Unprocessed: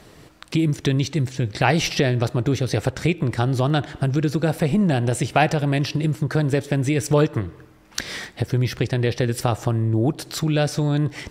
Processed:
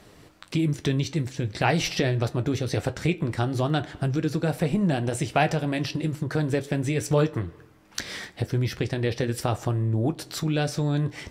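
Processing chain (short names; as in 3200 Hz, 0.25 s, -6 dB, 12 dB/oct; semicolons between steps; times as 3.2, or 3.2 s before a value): flange 0.49 Hz, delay 10 ms, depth 2.1 ms, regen -60%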